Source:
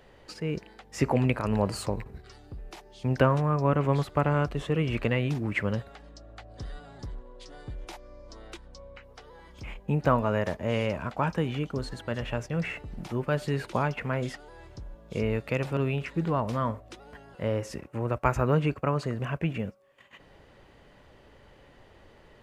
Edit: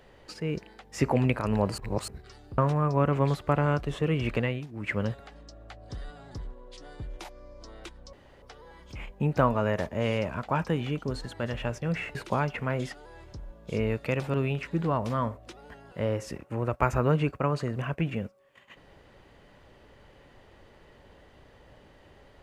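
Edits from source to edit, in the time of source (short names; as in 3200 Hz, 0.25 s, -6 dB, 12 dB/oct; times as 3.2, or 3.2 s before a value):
1.78–2.08 reverse
2.58–3.26 cut
4.97–5.76 dip -17 dB, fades 0.39 s equal-power
8.81–9.1 room tone
12.83–13.58 cut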